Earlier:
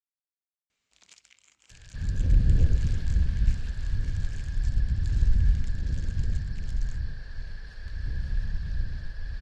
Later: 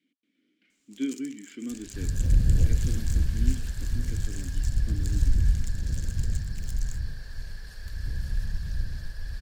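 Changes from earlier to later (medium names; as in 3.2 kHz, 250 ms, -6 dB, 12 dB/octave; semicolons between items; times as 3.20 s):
speech: unmuted; master: remove low-pass 4 kHz 12 dB/octave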